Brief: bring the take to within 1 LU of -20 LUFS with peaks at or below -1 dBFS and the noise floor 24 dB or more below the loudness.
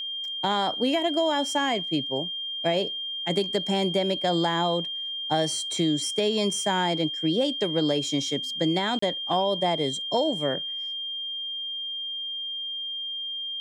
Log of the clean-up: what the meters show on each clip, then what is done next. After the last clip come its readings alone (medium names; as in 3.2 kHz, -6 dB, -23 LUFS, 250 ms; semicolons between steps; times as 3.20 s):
dropouts 1; longest dropout 34 ms; steady tone 3.2 kHz; tone level -30 dBFS; loudness -26.0 LUFS; peak level -12.0 dBFS; loudness target -20.0 LUFS
-> interpolate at 8.99 s, 34 ms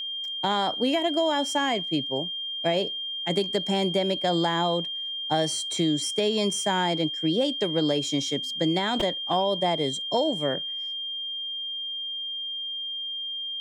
dropouts 0; steady tone 3.2 kHz; tone level -30 dBFS
-> band-stop 3.2 kHz, Q 30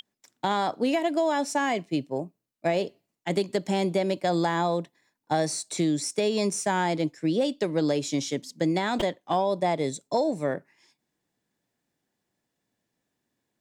steady tone not found; loudness -27.0 LUFS; peak level -13.0 dBFS; loudness target -20.0 LUFS
-> trim +7 dB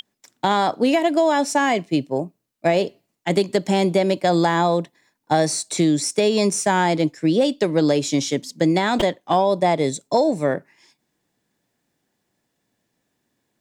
loudness -20.0 LUFS; peak level -6.0 dBFS; noise floor -75 dBFS